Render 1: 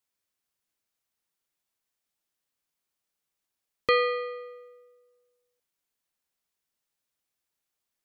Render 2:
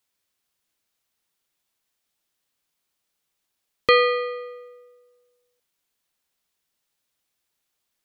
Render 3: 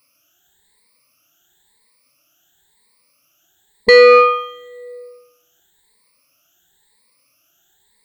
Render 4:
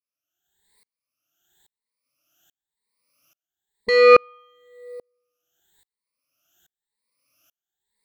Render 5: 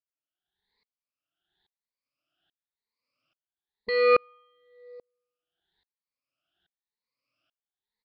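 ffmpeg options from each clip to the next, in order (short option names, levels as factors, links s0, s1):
-af "equalizer=f=3500:w=1.5:g=2.5,volume=2"
-af "afftfilt=real='re*pow(10,23/40*sin(2*PI*(0.93*log(max(b,1)*sr/1024/100)/log(2)-(0.97)*(pts-256)/sr)))':imag='im*pow(10,23/40*sin(2*PI*(0.93*log(max(b,1)*sr/1024/100)/log(2)-(0.97)*(pts-256)/sr)))':win_size=1024:overlap=0.75,alimiter=limit=0.299:level=0:latency=1,acontrast=88,volume=1.58"
-af "aeval=exprs='val(0)*pow(10,-38*if(lt(mod(-1.2*n/s,1),2*abs(-1.2)/1000),1-mod(-1.2*n/s,1)/(2*abs(-1.2)/1000),(mod(-1.2*n/s,1)-2*abs(-1.2)/1000)/(1-2*abs(-1.2)/1000))/20)':c=same"
-af "aresample=11025,aresample=44100,volume=0.376"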